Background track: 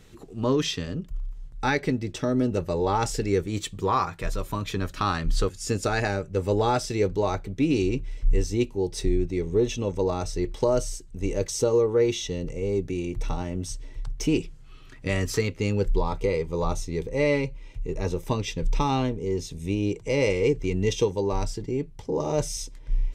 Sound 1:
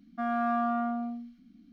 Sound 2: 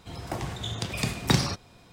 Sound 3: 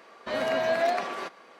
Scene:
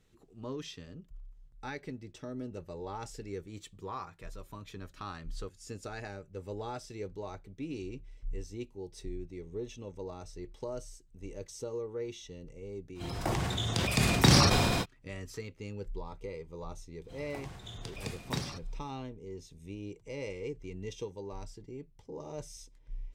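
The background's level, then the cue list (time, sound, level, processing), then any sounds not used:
background track −16.5 dB
0:12.94: mix in 2 −0.5 dB, fades 0.05 s + level that may fall only so fast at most 22 dB per second
0:17.03: mix in 2 −12.5 dB, fades 0.05 s
not used: 1, 3

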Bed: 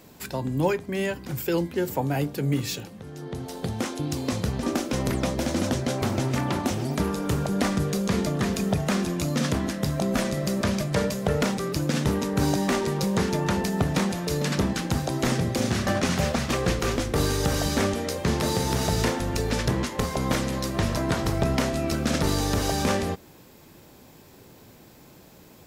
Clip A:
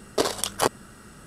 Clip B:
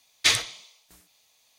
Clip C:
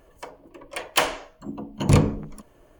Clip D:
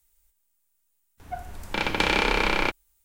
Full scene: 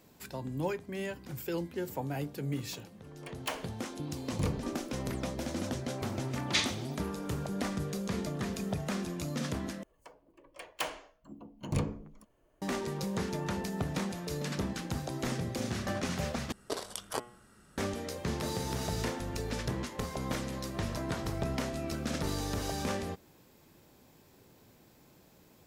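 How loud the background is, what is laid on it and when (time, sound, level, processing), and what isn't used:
bed −10 dB
0:02.50: mix in C −16 dB
0:06.29: mix in B −8.5 dB + low-pass filter 7,300 Hz
0:09.83: overwrite with C −14.5 dB
0:16.52: overwrite with A −13 dB + hum removal 120.5 Hz, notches 30
not used: D

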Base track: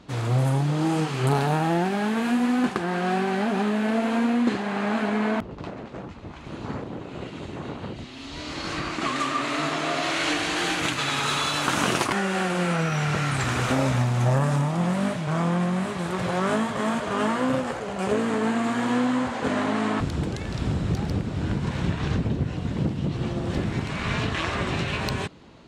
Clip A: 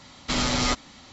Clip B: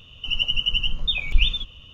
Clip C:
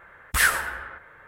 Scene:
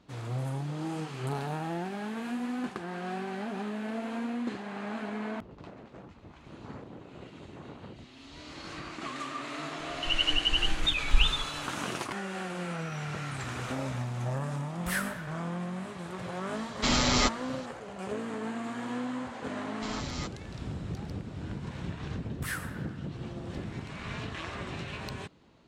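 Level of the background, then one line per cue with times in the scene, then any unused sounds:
base track −11.5 dB
0:09.79: mix in B −4.5 dB
0:14.52: mix in C −13 dB
0:16.54: mix in A −1 dB
0:19.53: mix in A −15 dB
0:22.08: mix in C −16.5 dB

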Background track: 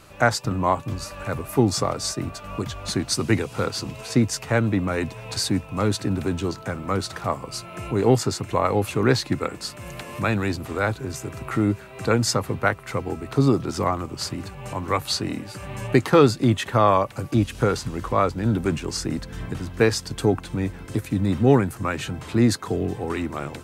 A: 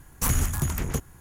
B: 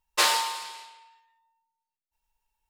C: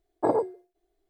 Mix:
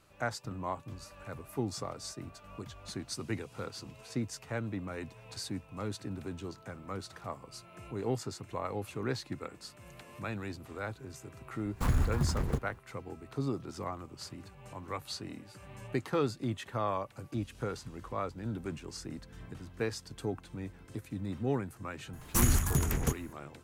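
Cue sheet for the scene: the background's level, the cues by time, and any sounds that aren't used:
background track −15.5 dB
0:11.59: mix in A −3 dB + running median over 15 samples
0:22.13: mix in A −2.5 dB
not used: B, C

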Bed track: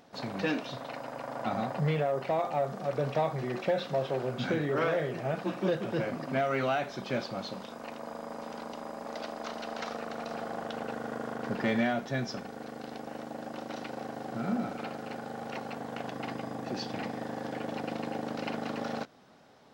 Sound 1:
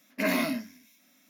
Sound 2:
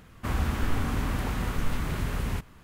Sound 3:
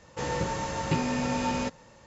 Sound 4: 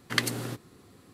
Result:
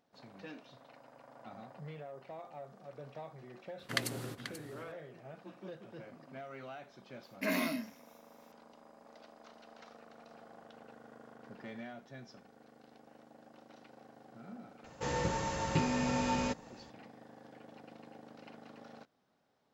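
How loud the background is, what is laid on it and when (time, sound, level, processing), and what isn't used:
bed track −18 dB
0:03.79: mix in 4 −7.5 dB + single-tap delay 486 ms −12 dB
0:07.23: mix in 1 −6.5 dB
0:14.84: mix in 3 −4 dB
not used: 2

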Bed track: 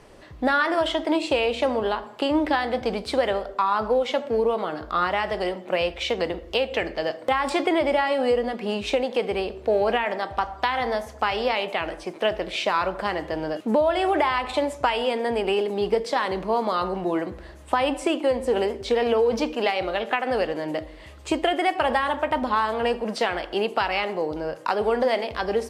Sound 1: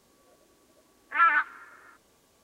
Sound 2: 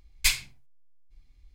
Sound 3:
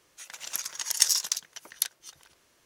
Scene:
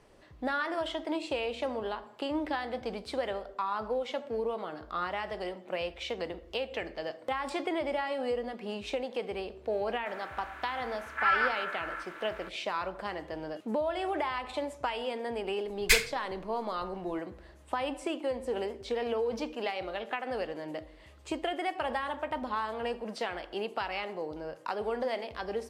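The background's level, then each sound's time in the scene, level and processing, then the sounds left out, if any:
bed track −10.5 dB
0:10.06: mix in 1 −7 dB + compressor on every frequency bin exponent 0.4
0:15.65: mix in 2 −2.5 dB + parametric band 1,600 Hz +11.5 dB 0.95 octaves
not used: 3

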